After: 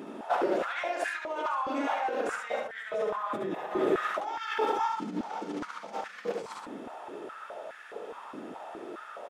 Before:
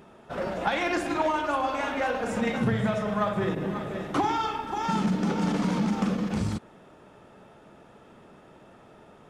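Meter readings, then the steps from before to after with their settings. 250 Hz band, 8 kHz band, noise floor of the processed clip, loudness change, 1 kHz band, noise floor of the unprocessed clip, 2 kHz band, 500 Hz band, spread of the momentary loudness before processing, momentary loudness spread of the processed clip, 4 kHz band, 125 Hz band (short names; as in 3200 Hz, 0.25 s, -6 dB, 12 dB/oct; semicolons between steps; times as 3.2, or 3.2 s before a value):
-9.5 dB, -6.0 dB, -47 dBFS, -5.5 dB, -2.5 dB, -53 dBFS, -2.5 dB, -1.0 dB, 5 LU, 14 LU, -5.5 dB, -21.0 dB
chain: negative-ratio compressor -35 dBFS, ratio -1; on a send: echo 71 ms -4.5 dB; on the sum: stepped high-pass 4.8 Hz 270–1700 Hz; gain -2 dB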